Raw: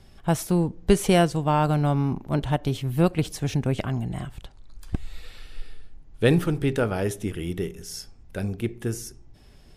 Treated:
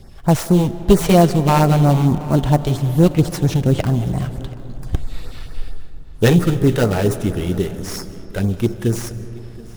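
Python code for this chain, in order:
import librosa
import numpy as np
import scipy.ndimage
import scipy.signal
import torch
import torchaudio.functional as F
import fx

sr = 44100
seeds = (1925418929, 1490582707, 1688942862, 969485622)

p1 = fx.tracing_dist(x, sr, depth_ms=0.086)
p2 = fx.sample_hold(p1, sr, seeds[0], rate_hz=3400.0, jitter_pct=20)
p3 = p1 + (p2 * 10.0 ** (-5.0 / 20.0))
p4 = fx.filter_lfo_notch(p3, sr, shape='sine', hz=4.4, low_hz=210.0, high_hz=3300.0, q=0.93)
p5 = 10.0 ** (-8.5 / 20.0) * np.tanh(p4 / 10.0 ** (-8.5 / 20.0))
p6 = p5 + fx.echo_single(p5, sr, ms=730, db=-21.5, dry=0)
p7 = fx.rev_freeverb(p6, sr, rt60_s=3.8, hf_ratio=0.35, predelay_ms=115, drr_db=13.5)
y = p7 * 10.0 ** (6.5 / 20.0)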